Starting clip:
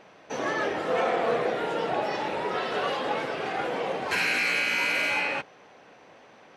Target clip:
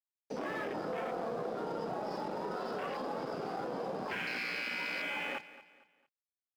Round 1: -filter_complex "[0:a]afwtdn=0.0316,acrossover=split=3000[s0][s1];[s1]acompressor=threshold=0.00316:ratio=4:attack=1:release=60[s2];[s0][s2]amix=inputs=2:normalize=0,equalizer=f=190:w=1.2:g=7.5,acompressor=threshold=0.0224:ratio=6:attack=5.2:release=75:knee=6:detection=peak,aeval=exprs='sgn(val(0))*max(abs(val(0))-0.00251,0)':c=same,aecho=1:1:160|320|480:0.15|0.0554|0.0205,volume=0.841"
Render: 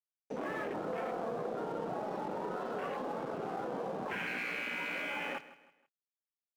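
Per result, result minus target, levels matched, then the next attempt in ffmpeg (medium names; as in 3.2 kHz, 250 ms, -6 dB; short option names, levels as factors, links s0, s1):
echo 67 ms early; 4 kHz band -3.5 dB
-filter_complex "[0:a]afwtdn=0.0316,acrossover=split=3000[s0][s1];[s1]acompressor=threshold=0.00316:ratio=4:attack=1:release=60[s2];[s0][s2]amix=inputs=2:normalize=0,equalizer=f=190:w=1.2:g=7.5,acompressor=threshold=0.0224:ratio=6:attack=5.2:release=75:knee=6:detection=peak,aeval=exprs='sgn(val(0))*max(abs(val(0))-0.00251,0)':c=same,aecho=1:1:227|454|681:0.15|0.0554|0.0205,volume=0.841"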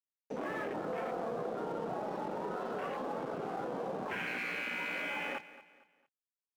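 4 kHz band -3.5 dB
-filter_complex "[0:a]afwtdn=0.0316,acrossover=split=3000[s0][s1];[s1]acompressor=threshold=0.00316:ratio=4:attack=1:release=60[s2];[s0][s2]amix=inputs=2:normalize=0,lowpass=f=5000:t=q:w=15,equalizer=f=190:w=1.2:g=7.5,acompressor=threshold=0.0224:ratio=6:attack=5.2:release=75:knee=6:detection=peak,aeval=exprs='sgn(val(0))*max(abs(val(0))-0.00251,0)':c=same,aecho=1:1:227|454|681:0.15|0.0554|0.0205,volume=0.841"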